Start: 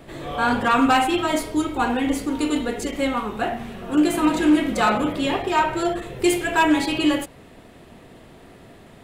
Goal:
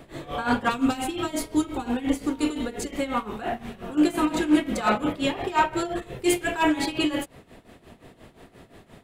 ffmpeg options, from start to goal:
-filter_complex "[0:a]asettb=1/sr,asplit=3[s0][s1][s2];[s0]atrim=end=0.694[s3];[s1]atrim=start=0.69:end=2.9,asetpts=PTS-STARTPTS,afade=t=in:d=0.004:c=qsin,afade=t=out:st=2.206:d=0.004:c=qsin,acrossover=split=480|3000[s4][s5][s6];[s5]acompressor=threshold=0.0355:ratio=6[s7];[s4][s7][s6]amix=inputs=3:normalize=0[s8];[s2]atrim=start=2.896[s9];[s3][s8]acrossfade=d=0.004:c1=hsin:c2=qsin[s10];[s10][s9]acrossfade=d=0.004:c1=qsin:c2=hsin,tremolo=f=5.7:d=0.81"

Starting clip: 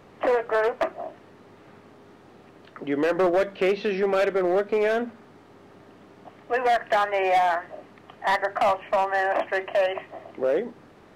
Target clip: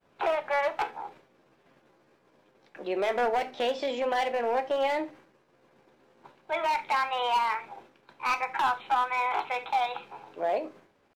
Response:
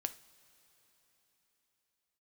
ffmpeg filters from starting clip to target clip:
-filter_complex "[0:a]asetrate=57191,aresample=44100,atempo=0.771105,agate=range=0.0224:threshold=0.00708:ratio=3:detection=peak[s0];[1:a]atrim=start_sample=2205,atrim=end_sample=3969[s1];[s0][s1]afir=irnorm=-1:irlink=0,volume=0.631"

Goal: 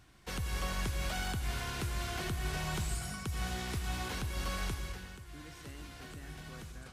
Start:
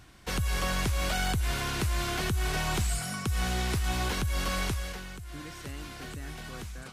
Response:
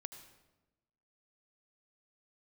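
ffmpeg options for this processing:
-filter_complex "[1:a]atrim=start_sample=2205[s0];[0:a][s0]afir=irnorm=-1:irlink=0,volume=0.708"

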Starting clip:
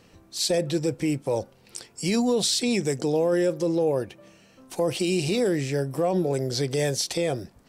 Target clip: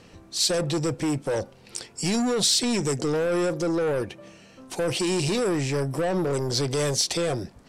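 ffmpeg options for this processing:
-filter_complex "[0:a]acrossover=split=5000[s0][s1];[s0]asoftclip=type=tanh:threshold=0.0473[s2];[s1]lowpass=10000[s3];[s2][s3]amix=inputs=2:normalize=0,volume=1.78"

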